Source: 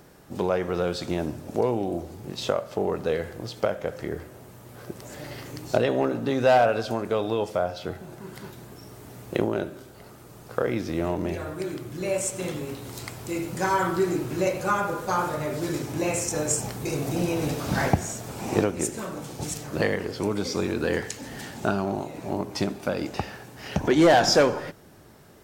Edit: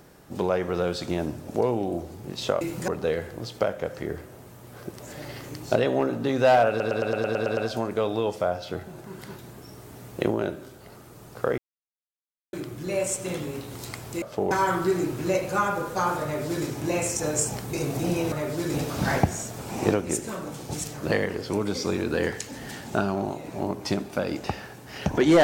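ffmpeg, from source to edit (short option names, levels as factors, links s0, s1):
-filter_complex "[0:a]asplit=17[s0][s1][s2][s3][s4][s5][s6][s7][s8][s9][s10][s11][s12][s13][s14][s15][s16];[s0]atrim=end=2.612[s17];[s1]atrim=start=13.358:end=13.632[s18];[s2]atrim=start=2.898:end=6.822[s19];[s3]atrim=start=6.708:end=6.822[s20];[s4]atrim=start=6.708:end=6.822[s21];[s5]atrim=start=6.708:end=6.822[s22];[s6]atrim=start=6.708:end=6.822[s23];[s7]atrim=start=6.708:end=6.822[s24];[s8]atrim=start=6.708:end=6.822[s25];[s9]atrim=start=6.708:end=6.822[s26];[s10]atrim=start=6.708:end=10.72,asetpts=PTS-STARTPTS,afade=t=out:st=4.008:d=0.004:c=hsin[s27];[s11]atrim=start=10.72:end=11.67,asetpts=PTS-STARTPTS,volume=0[s28];[s12]atrim=start=11.67:end=13.362,asetpts=PTS-STARTPTS,afade=t=in:d=0.004:c=hsin[s29];[s13]atrim=start=2.608:end=2.902[s30];[s14]atrim=start=13.628:end=17.442[s31];[s15]atrim=start=15.358:end=15.782[s32];[s16]atrim=start=17.438[s33];[s17][s18]acrossfade=d=0.004:c1=hsin:c2=hsin[s34];[s34][s19]acrossfade=d=0.004:c1=hsin:c2=hsin[s35];[s35][s20]acrossfade=d=0.004:c1=hsin:c2=hsin[s36];[s36][s21]acrossfade=d=0.004:c1=hsin:c2=hsin[s37];[s37][s22]acrossfade=d=0.004:c1=hsin:c2=hsin[s38];[s38][s23]acrossfade=d=0.004:c1=hsin:c2=hsin[s39];[s39][s24]acrossfade=d=0.004:c1=hsin:c2=hsin[s40];[s40][s25]acrossfade=d=0.004:c1=hsin:c2=hsin[s41];[s41][s26]acrossfade=d=0.004:c1=hsin:c2=hsin[s42];[s27][s28][s29]concat=n=3:v=0:a=1[s43];[s42][s43]acrossfade=d=0.004:c1=hsin:c2=hsin[s44];[s44][s30]acrossfade=d=0.004:c1=hsin:c2=hsin[s45];[s45][s31]acrossfade=d=0.004:c1=hsin:c2=hsin[s46];[s46][s32]acrossfade=d=0.004:c1=hsin:c2=hsin[s47];[s47][s33]acrossfade=d=0.004:c1=hsin:c2=hsin"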